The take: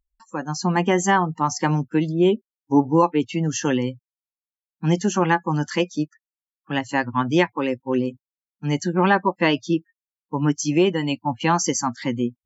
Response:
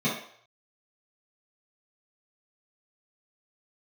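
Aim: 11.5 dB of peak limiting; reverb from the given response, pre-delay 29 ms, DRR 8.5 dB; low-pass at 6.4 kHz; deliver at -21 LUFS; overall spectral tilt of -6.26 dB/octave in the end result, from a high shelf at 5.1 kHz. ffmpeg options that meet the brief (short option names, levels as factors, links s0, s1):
-filter_complex "[0:a]lowpass=6400,highshelf=f=5100:g=-7,alimiter=limit=0.168:level=0:latency=1,asplit=2[s0][s1];[1:a]atrim=start_sample=2205,adelay=29[s2];[s1][s2]afir=irnorm=-1:irlink=0,volume=0.1[s3];[s0][s3]amix=inputs=2:normalize=0,volume=1.58"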